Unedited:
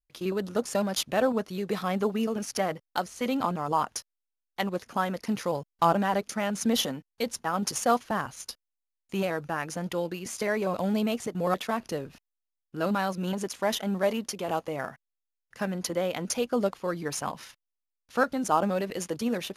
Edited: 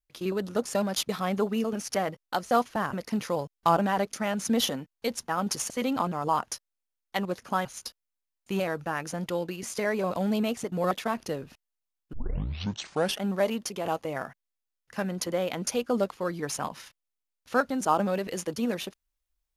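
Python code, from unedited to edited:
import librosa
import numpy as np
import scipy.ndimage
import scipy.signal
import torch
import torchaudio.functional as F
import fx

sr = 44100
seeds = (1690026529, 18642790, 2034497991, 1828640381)

y = fx.edit(x, sr, fx.cut(start_s=1.09, length_s=0.63),
    fx.swap(start_s=3.14, length_s=1.95, other_s=7.86, other_length_s=0.42),
    fx.tape_start(start_s=12.76, length_s=1.09), tone=tone)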